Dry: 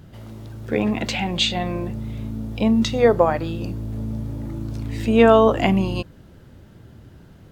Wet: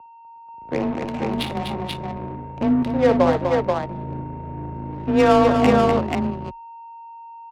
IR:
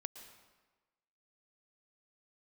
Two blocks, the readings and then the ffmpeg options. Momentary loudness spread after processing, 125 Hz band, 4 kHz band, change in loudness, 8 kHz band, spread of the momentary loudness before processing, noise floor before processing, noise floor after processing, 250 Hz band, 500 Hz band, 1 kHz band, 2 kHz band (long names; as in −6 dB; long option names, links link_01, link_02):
21 LU, −2.0 dB, −6.5 dB, 0.0 dB, can't be measured, 15 LU, −47 dBFS, −44 dBFS, +0.5 dB, −0.5 dB, +2.5 dB, −1.5 dB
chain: -filter_complex "[0:a]aeval=exprs='sgn(val(0))*max(abs(val(0))-0.0316,0)':channel_layout=same,aeval=exprs='val(0)+0.0178*sin(2*PI*900*n/s)':channel_layout=same,adynamicsmooth=sensitivity=1:basefreq=530,afreqshift=24,asoftclip=type=tanh:threshold=-6dB,asplit=2[link_01][link_02];[link_02]aecho=0:1:57|248|485:0.251|0.473|0.708[link_03];[link_01][link_03]amix=inputs=2:normalize=0"